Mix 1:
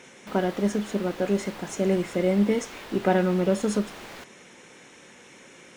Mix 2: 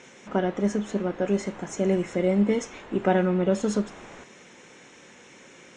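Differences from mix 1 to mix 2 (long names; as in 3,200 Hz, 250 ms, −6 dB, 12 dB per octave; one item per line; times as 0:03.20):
background: add high-frequency loss of the air 470 metres
master: add Chebyshev low-pass filter 7,500 Hz, order 3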